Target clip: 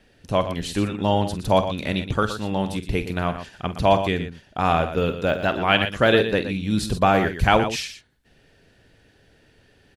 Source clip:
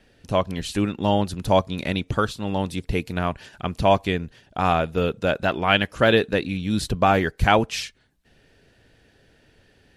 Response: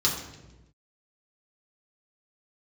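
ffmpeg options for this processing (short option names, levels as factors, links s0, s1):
-filter_complex "[0:a]asettb=1/sr,asplit=3[s0][s1][s2];[s0]atrim=end=4.954[s3];[s1]atrim=start=4.95:end=5.46,asetpts=PTS-STARTPTS,afade=t=in:d=0.004:c=qsin,afade=t=out:st=0.506:d=0.004:c=qsin,deesser=0.75[s4];[s2]atrim=start=5.456[s5];[s3][s4]acrossfade=d=0.004:c1=hsin:c2=qsin[s6];[s6][s5]acrossfade=d=0.004:c1=qsin:c2=hsin,aecho=1:1:47|119:0.251|0.299"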